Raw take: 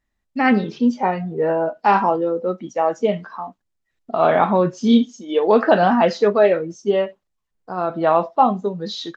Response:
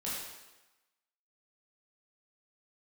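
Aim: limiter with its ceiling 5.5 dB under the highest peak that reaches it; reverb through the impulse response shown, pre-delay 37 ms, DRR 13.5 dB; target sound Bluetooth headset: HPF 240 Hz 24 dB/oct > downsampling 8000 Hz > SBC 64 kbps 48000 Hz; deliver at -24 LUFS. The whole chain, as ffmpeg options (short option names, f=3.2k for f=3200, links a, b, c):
-filter_complex "[0:a]alimiter=limit=-8dB:level=0:latency=1,asplit=2[a][b];[1:a]atrim=start_sample=2205,adelay=37[c];[b][c]afir=irnorm=-1:irlink=0,volume=-16.5dB[d];[a][d]amix=inputs=2:normalize=0,highpass=f=240:w=0.5412,highpass=f=240:w=1.3066,aresample=8000,aresample=44100,volume=-3dB" -ar 48000 -c:a sbc -b:a 64k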